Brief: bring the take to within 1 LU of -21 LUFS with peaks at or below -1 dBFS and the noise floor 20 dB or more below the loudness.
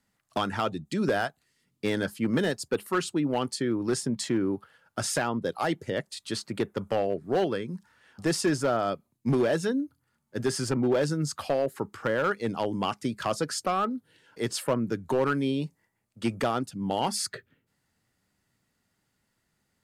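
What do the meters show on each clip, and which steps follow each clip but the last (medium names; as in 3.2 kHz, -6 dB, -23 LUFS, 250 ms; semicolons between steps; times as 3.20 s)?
clipped samples 0.8%; clipping level -18.5 dBFS; loudness -29.0 LUFS; peak level -18.5 dBFS; loudness target -21.0 LUFS
-> clip repair -18.5 dBFS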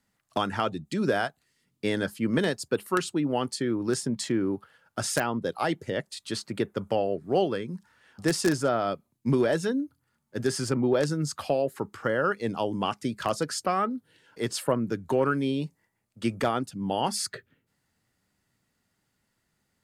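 clipped samples 0.0%; loudness -28.5 LUFS; peak level -9.5 dBFS; loudness target -21.0 LUFS
-> trim +7.5 dB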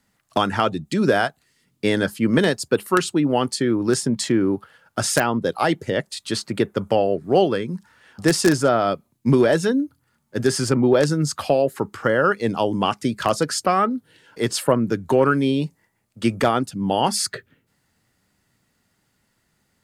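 loudness -21.0 LUFS; peak level -2.0 dBFS; noise floor -69 dBFS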